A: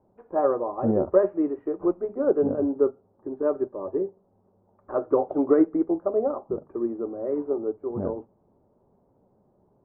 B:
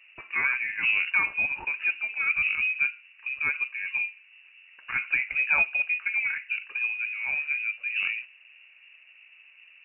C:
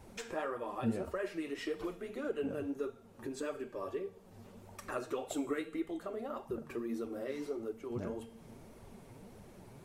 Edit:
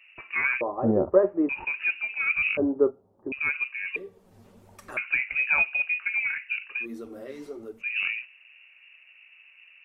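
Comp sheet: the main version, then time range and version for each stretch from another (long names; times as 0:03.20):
B
0:00.61–0:01.49: punch in from A
0:02.57–0:03.32: punch in from A
0:03.96–0:04.97: punch in from C
0:06.83–0:07.81: punch in from C, crossfade 0.06 s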